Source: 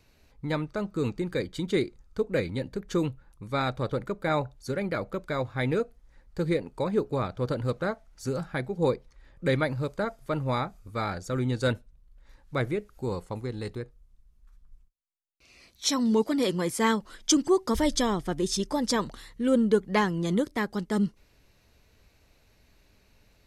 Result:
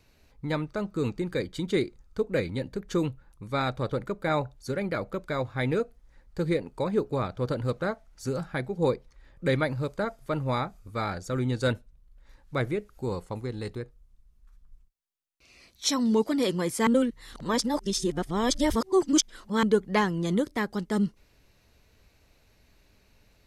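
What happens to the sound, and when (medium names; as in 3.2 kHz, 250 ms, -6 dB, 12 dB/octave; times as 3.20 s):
16.87–19.63 s: reverse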